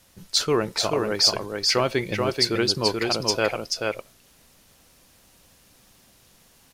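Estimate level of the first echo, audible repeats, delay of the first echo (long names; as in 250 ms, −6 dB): −3.5 dB, 1, 433 ms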